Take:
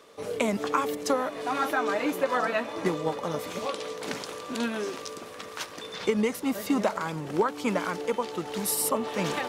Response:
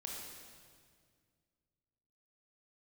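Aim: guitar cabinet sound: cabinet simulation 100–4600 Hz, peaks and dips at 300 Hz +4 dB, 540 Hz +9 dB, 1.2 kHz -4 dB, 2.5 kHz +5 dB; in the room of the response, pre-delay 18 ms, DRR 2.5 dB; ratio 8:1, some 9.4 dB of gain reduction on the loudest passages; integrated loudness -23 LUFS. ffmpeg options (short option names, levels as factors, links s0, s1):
-filter_complex "[0:a]acompressor=threshold=0.0316:ratio=8,asplit=2[s0][s1];[1:a]atrim=start_sample=2205,adelay=18[s2];[s1][s2]afir=irnorm=-1:irlink=0,volume=0.891[s3];[s0][s3]amix=inputs=2:normalize=0,highpass=100,equalizer=f=300:t=q:w=4:g=4,equalizer=f=540:t=q:w=4:g=9,equalizer=f=1200:t=q:w=4:g=-4,equalizer=f=2500:t=q:w=4:g=5,lowpass=f=4600:w=0.5412,lowpass=f=4600:w=1.3066,volume=2.24"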